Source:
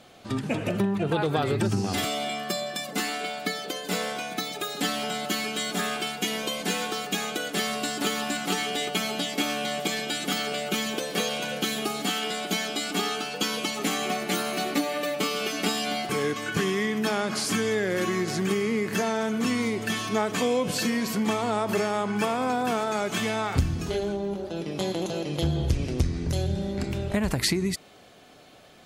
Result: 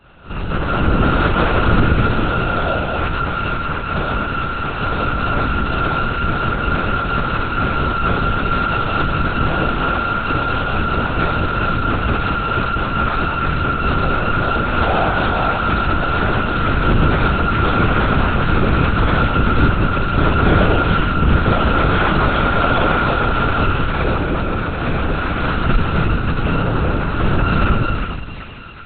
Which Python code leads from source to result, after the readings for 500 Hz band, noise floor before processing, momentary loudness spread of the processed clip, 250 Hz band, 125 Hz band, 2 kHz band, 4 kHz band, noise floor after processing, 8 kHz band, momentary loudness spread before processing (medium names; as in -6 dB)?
+6.5 dB, -38 dBFS, 5 LU, +8.0 dB, +14.5 dB, +11.0 dB, +1.5 dB, -23 dBFS, under -40 dB, 4 LU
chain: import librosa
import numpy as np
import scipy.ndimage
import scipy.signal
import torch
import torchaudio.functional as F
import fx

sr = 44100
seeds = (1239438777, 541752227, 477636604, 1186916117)

y = np.r_[np.sort(x[:len(x) // 32 * 32].reshape(-1, 32), axis=1).ravel(), x[len(x) // 32 * 32:]]
y = fx.echo_split(y, sr, split_hz=1300.0, low_ms=192, high_ms=390, feedback_pct=52, wet_db=-4.0)
y = fx.rev_schroeder(y, sr, rt60_s=0.73, comb_ms=29, drr_db=-9.0)
y = fx.lpc_vocoder(y, sr, seeds[0], excitation='whisper', order=8)